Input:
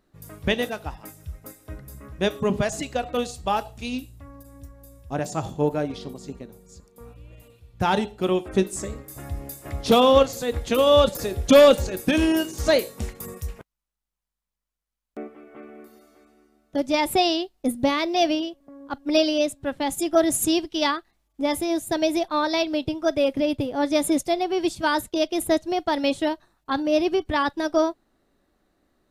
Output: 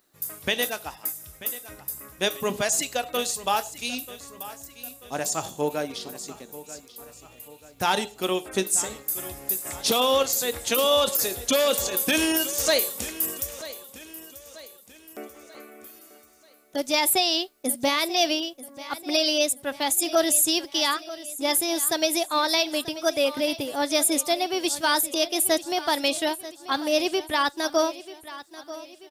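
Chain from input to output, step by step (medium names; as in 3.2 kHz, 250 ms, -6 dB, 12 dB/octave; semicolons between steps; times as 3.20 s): RIAA curve recording; peak limiter -11.5 dBFS, peak gain reduction 10.5 dB; on a send: feedback delay 937 ms, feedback 46%, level -16 dB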